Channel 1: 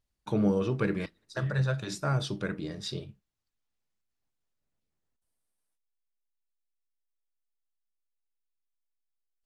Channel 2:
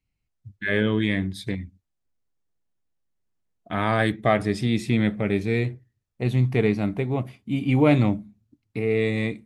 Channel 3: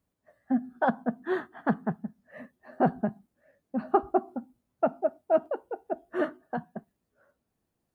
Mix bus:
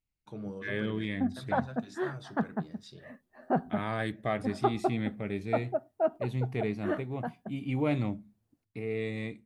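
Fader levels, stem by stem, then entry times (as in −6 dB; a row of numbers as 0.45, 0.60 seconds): −14.5, −11.0, −4.0 decibels; 0.00, 0.00, 0.70 seconds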